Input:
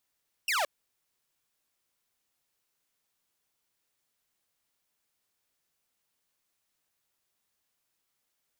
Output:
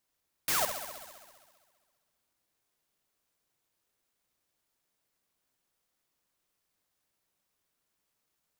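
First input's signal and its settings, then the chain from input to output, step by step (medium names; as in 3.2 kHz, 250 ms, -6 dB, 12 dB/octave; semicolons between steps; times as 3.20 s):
laser zap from 2.9 kHz, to 540 Hz, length 0.17 s saw, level -23 dB
band-stop 840 Hz, Q 13; on a send: bucket-brigade echo 66 ms, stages 2048, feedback 76%, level -9 dB; on the sum: sampling jitter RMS 0.13 ms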